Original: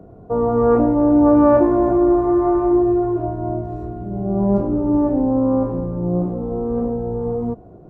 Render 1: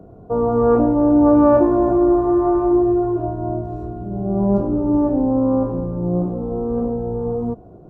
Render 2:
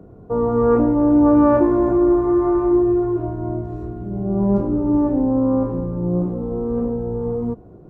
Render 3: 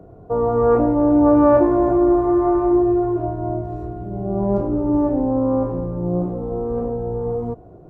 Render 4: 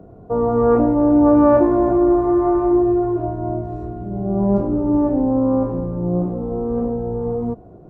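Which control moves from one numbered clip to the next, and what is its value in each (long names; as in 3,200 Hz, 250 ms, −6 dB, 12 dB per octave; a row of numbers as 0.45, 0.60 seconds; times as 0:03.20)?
parametric band, centre frequency: 2,000, 680, 220, 16,000 Hertz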